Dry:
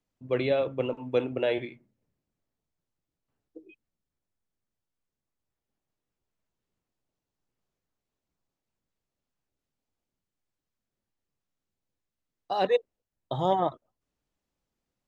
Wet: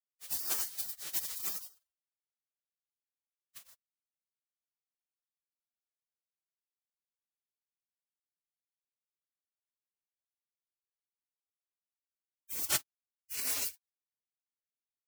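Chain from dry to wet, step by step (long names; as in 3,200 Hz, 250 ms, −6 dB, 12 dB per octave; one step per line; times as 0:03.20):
spectral envelope flattened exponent 0.3
high-pass filter 81 Hz 24 dB per octave
gate on every frequency bin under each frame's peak −30 dB weak
level +8 dB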